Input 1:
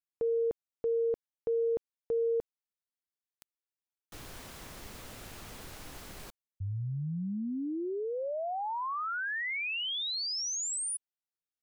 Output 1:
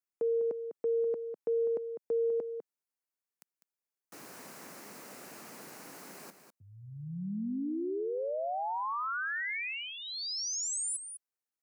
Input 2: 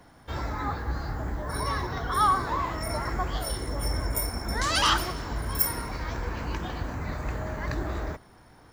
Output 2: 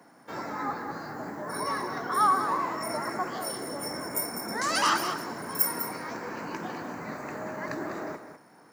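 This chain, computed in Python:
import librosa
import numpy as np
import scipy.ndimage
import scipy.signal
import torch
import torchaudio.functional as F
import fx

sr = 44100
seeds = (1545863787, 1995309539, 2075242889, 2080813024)

y = scipy.signal.sosfilt(scipy.signal.butter(4, 180.0, 'highpass', fs=sr, output='sos'), x)
y = fx.peak_eq(y, sr, hz=3400.0, db=-11.0, octaves=0.53)
y = y + 10.0 ** (-9.5 / 20.0) * np.pad(y, (int(201 * sr / 1000.0), 0))[:len(y)]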